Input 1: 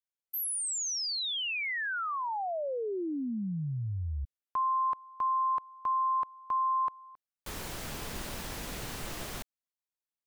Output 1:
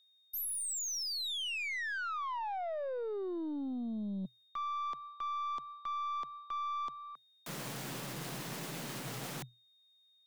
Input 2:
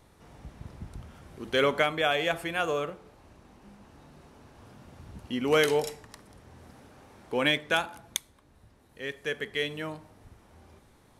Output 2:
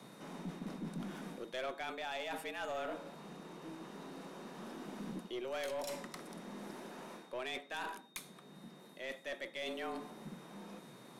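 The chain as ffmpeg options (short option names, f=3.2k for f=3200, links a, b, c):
-af "areverse,acompressor=threshold=-38dB:ratio=5:attack=0.51:release=350:knee=1:detection=peak,areverse,afreqshift=120,aeval=exprs='val(0)+0.000316*sin(2*PI*3700*n/s)':c=same,aeval=exprs='(tanh(79.4*val(0)+0.2)-tanh(0.2))/79.4':c=same,volume=4.5dB"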